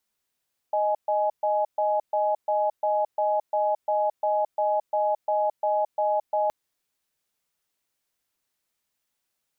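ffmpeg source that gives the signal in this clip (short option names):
-f lavfi -i "aevalsrc='0.0668*(sin(2*PI*620*t)+sin(2*PI*838*t))*clip(min(mod(t,0.35),0.22-mod(t,0.35))/0.005,0,1)':d=5.77:s=44100"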